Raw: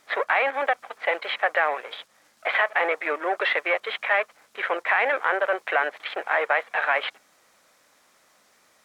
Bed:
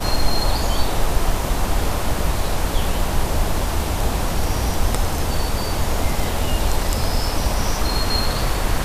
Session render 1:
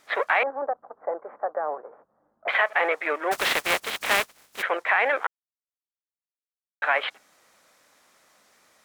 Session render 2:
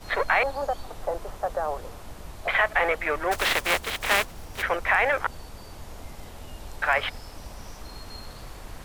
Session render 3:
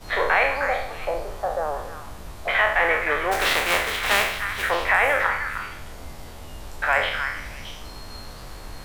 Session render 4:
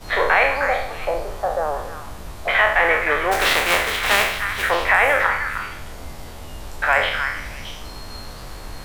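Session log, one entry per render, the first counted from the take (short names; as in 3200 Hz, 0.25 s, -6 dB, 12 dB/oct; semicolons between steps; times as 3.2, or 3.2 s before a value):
0.43–2.48 Bessel low-pass 710 Hz, order 8; 3.31–4.61 spectral contrast lowered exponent 0.39; 5.27–6.82 mute
add bed -20.5 dB
spectral trails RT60 0.65 s; delay with a stepping band-pass 0.309 s, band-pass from 1500 Hz, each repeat 1.4 oct, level -5 dB
gain +3.5 dB; limiter -3 dBFS, peak gain reduction 1.5 dB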